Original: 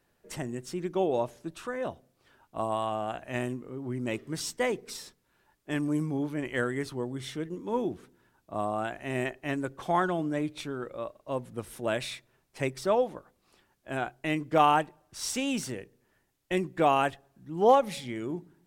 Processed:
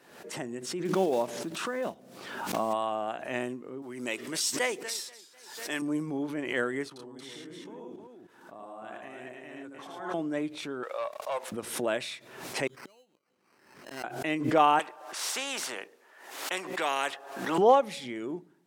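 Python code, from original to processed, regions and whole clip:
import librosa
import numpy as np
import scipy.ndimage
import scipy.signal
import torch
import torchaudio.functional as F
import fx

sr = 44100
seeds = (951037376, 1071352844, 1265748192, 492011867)

y = fx.chain(x, sr, fx.block_float(bits=5),
    fx.peak_eq(hz=200.0, db=9.0, octaves=0.39),
    fx.pre_swell(db_per_s=41.0), at=(0.85, 2.74))
y = fx.chain(y, sr, fx.tilt_eq(slope=3.0),
    fx.echo_warbled(ms=245, feedback_pct=36, rate_hz=2.8, cents=162, wet_db=-18), at=(3.82, 5.82))
y = fx.chain(y, sr, fx.level_steps(step_db=23),
    fx.echo_multitap(ms=(79, 111, 309), db=(-3.5, -4.0, -3.5)), at=(6.88, 10.14))
y = fx.chain(y, sr, fx.highpass(hz=600.0, slope=24),
    fx.leveller(passes=2), at=(10.83, 11.52))
y = fx.chain(y, sr, fx.sample_hold(seeds[0], rate_hz=3500.0, jitter_pct=0),
    fx.gate_flip(shuts_db=-31.0, range_db=-33),
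    fx.peak_eq(hz=690.0, db=-5.0, octaves=1.0), at=(12.67, 14.04))
y = fx.chain(y, sr, fx.highpass(hz=720.0, slope=12),
    fx.high_shelf(hz=2000.0, db=-9.0),
    fx.spectral_comp(ratio=2.0), at=(14.79, 17.58))
y = scipy.signal.sosfilt(scipy.signal.butter(2, 240.0, 'highpass', fs=sr, output='sos'), y)
y = fx.high_shelf(y, sr, hz=12000.0, db=-10.0)
y = fx.pre_swell(y, sr, db_per_s=67.0)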